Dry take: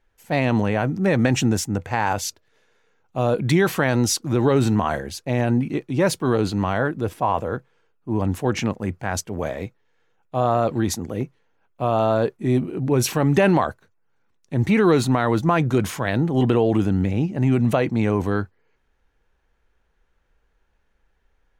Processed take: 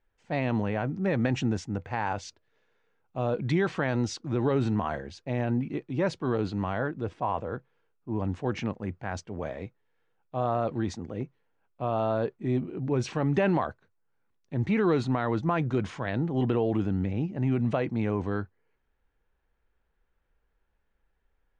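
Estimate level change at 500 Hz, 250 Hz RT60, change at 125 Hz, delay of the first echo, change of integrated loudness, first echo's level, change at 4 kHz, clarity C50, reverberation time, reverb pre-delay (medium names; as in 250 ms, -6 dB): -8.0 dB, no reverb, -7.5 dB, no echo, -8.0 dB, no echo, -12.0 dB, no reverb, no reverb, no reverb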